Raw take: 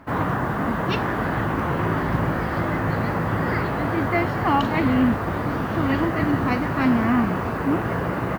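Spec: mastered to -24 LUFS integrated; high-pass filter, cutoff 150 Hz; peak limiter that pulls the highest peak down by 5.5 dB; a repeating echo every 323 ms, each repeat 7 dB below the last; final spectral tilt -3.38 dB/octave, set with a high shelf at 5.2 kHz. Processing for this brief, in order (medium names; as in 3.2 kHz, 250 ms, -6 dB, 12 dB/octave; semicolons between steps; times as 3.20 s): high-pass 150 Hz; treble shelf 5.2 kHz -5.5 dB; peak limiter -15 dBFS; feedback delay 323 ms, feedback 45%, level -7 dB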